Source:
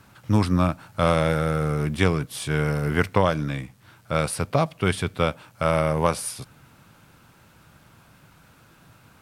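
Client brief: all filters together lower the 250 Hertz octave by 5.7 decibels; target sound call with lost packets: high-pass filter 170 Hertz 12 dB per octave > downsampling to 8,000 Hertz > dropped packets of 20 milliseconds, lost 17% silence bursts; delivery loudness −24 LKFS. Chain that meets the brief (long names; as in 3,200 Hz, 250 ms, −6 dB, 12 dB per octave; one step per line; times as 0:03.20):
high-pass filter 170 Hz 12 dB per octave
parametric band 250 Hz −6 dB
downsampling to 8,000 Hz
dropped packets of 20 ms, lost 17% silence bursts
level +3.5 dB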